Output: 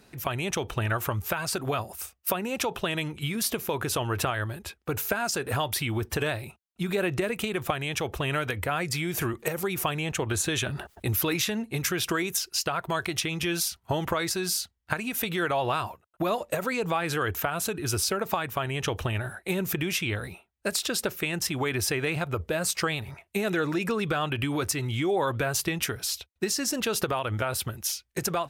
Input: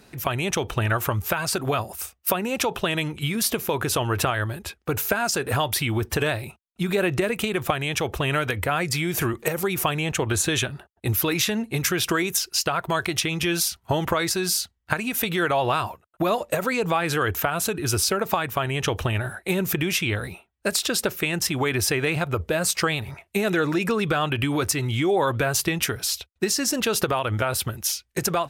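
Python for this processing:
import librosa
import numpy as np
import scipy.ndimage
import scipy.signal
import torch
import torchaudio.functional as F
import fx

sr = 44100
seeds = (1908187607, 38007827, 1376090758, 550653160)

y = fx.env_flatten(x, sr, amount_pct=50, at=(10.66, 11.36))
y = y * librosa.db_to_amplitude(-4.5)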